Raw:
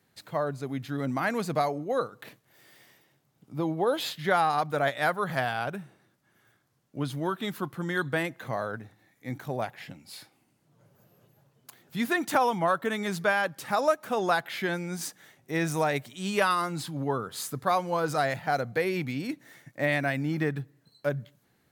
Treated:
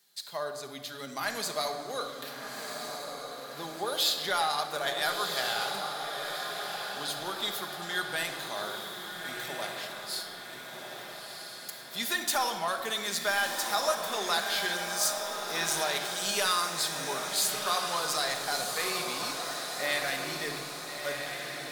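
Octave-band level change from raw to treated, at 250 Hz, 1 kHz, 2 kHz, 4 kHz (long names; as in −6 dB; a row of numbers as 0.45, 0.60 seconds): −11.5, −3.5, −1.0, +9.5 decibels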